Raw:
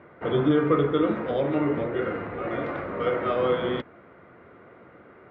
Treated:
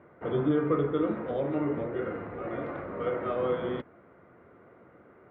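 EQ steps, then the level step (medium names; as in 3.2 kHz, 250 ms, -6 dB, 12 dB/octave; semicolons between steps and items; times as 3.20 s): treble shelf 2.6 kHz -11.5 dB; -4.5 dB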